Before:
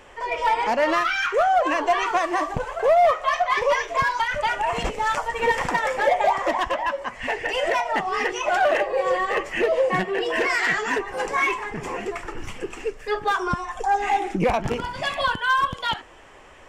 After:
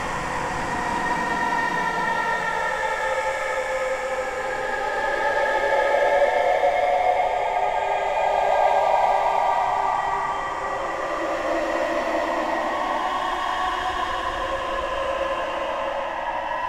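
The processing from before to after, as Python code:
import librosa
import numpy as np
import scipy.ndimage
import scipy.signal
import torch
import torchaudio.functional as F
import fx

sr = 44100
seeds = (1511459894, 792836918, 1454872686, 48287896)

y = fx.paulstretch(x, sr, seeds[0], factor=14.0, window_s=0.25, from_s=5.64)
y = fx.dmg_noise_colour(y, sr, seeds[1], colour='brown', level_db=-45.0)
y = F.gain(torch.from_numpy(y), -1.0).numpy()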